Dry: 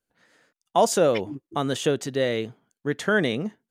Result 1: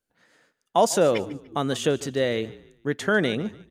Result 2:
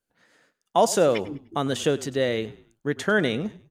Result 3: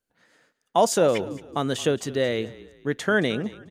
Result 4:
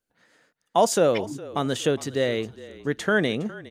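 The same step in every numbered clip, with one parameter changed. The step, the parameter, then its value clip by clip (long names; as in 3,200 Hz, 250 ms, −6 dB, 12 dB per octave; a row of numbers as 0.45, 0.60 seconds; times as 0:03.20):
echo with shifted repeats, delay time: 147, 100, 221, 411 milliseconds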